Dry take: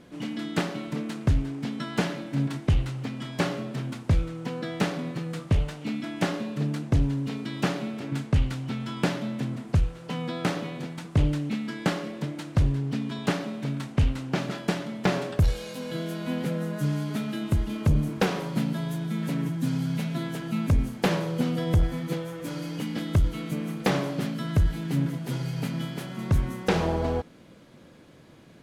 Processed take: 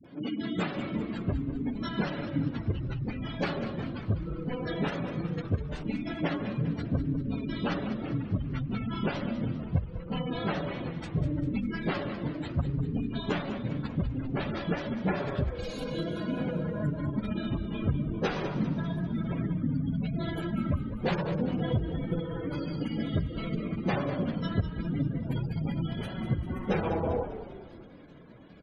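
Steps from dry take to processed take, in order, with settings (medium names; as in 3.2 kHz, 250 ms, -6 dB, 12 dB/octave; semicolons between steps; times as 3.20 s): phase randomisation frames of 50 ms; spectral gate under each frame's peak -25 dB strong; high-pass 85 Hz; compression 2:1, threshold -28 dBFS, peak gain reduction 7.5 dB; phase dispersion highs, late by 46 ms, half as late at 390 Hz; frequency-shifting echo 198 ms, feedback 53%, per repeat -50 Hz, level -10.5 dB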